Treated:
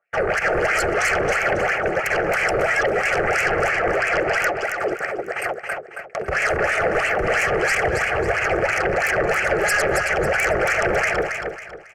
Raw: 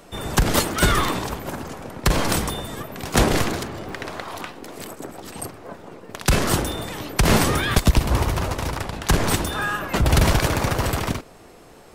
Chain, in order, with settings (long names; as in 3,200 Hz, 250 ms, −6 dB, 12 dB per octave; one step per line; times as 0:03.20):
noise gate −34 dBFS, range −45 dB
low-pass filter 3,600 Hz 6 dB per octave
in parallel at +2.5 dB: compressor whose output falls as the input rises −25 dBFS
on the sum: brickwall limiter −15 dBFS, peak gain reduction 11 dB
LFO wah 3 Hz 320–2,500 Hz, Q 4.2
sine wavefolder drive 19 dB, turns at −14.5 dBFS
phaser with its sweep stopped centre 1,000 Hz, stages 6
on a send: repeating echo 274 ms, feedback 34%, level −5.5 dB